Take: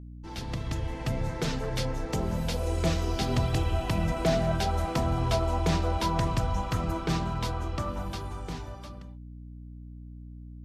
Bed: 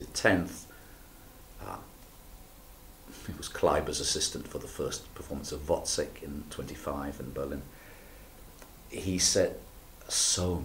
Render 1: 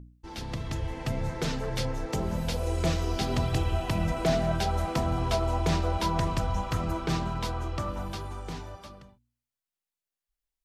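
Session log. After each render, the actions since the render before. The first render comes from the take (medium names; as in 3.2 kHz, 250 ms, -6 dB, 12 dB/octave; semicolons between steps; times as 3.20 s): de-hum 60 Hz, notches 5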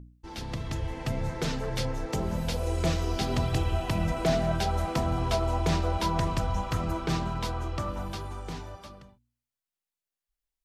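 no audible change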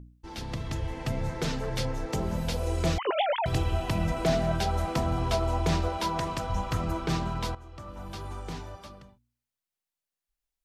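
2.98–3.46 s: formants replaced by sine waves; 5.88–6.50 s: bass shelf 150 Hz -11.5 dB; 7.55–8.30 s: fade in quadratic, from -15 dB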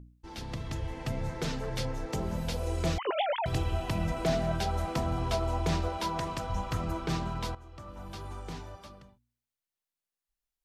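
trim -3 dB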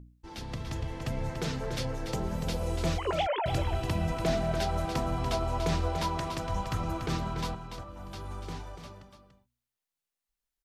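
delay 289 ms -7.5 dB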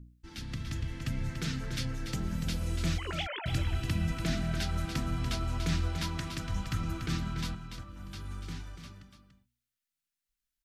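high-order bell 640 Hz -13 dB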